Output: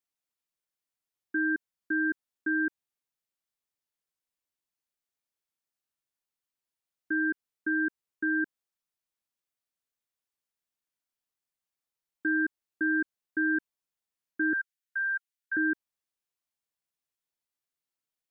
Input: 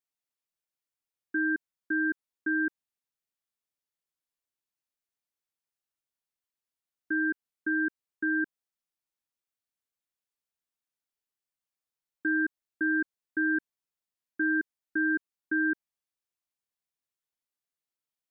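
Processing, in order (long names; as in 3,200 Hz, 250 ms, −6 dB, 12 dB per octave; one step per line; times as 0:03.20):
0:14.53–0:15.57: Chebyshev high-pass filter 1,400 Hz, order 10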